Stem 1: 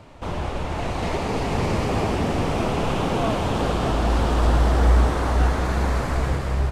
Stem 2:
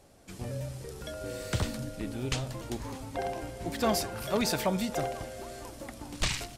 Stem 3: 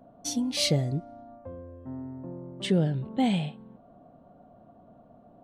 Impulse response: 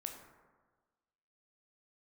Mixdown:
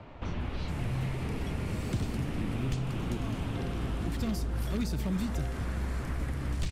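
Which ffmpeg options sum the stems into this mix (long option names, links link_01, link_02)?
-filter_complex "[0:a]volume=-1.5dB[link_01];[1:a]lowshelf=frequency=370:gain=11,aeval=exprs='0.188*(abs(mod(val(0)/0.188+3,4)-2)-1)':channel_layout=same,adelay=400,volume=-3.5dB[link_02];[2:a]volume=-12dB[link_03];[link_01][link_03]amix=inputs=2:normalize=0,lowpass=3000,acompressor=threshold=-28dB:ratio=6,volume=0dB[link_04];[link_02][link_04]amix=inputs=2:normalize=0,acrossover=split=340|1400[link_05][link_06][link_07];[link_05]acompressor=threshold=-28dB:ratio=4[link_08];[link_06]acompressor=threshold=-52dB:ratio=4[link_09];[link_07]acompressor=threshold=-44dB:ratio=4[link_10];[link_08][link_09][link_10]amix=inputs=3:normalize=0"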